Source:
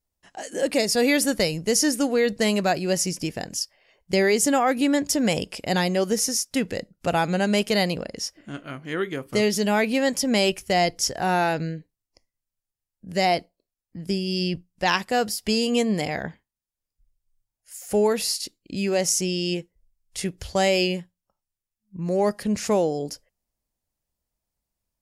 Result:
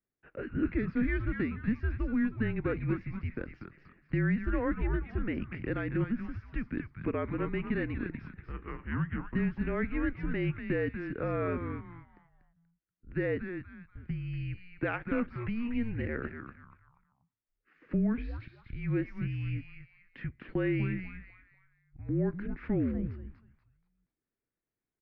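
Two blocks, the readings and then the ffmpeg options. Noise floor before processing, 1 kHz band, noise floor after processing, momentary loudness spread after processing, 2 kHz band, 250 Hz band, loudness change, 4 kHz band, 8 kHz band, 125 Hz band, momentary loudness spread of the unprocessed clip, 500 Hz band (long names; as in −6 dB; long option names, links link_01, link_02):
below −85 dBFS, −18.0 dB, below −85 dBFS, 13 LU, −10.5 dB, −7.0 dB, −10.5 dB, below −25 dB, below −40 dB, −1.5 dB, 11 LU, −13.5 dB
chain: -filter_complex "[0:a]equalizer=frequency=250:width_type=o:width=1:gain=3,equalizer=frequency=500:width_type=o:width=1:gain=3,equalizer=frequency=1000:width_type=o:width=1:gain=-9,acompressor=threshold=-32dB:ratio=2,asplit=5[link_01][link_02][link_03][link_04][link_05];[link_02]adelay=240,afreqshift=-140,volume=-7dB[link_06];[link_03]adelay=480,afreqshift=-280,volume=-16.9dB[link_07];[link_04]adelay=720,afreqshift=-420,volume=-26.8dB[link_08];[link_05]adelay=960,afreqshift=-560,volume=-36.7dB[link_09];[link_01][link_06][link_07][link_08][link_09]amix=inputs=5:normalize=0,highpass=frequency=290:width_type=q:width=0.5412,highpass=frequency=290:width_type=q:width=1.307,lowpass=frequency=2400:width_type=q:width=0.5176,lowpass=frequency=2400:width_type=q:width=0.7071,lowpass=frequency=2400:width_type=q:width=1.932,afreqshift=-230"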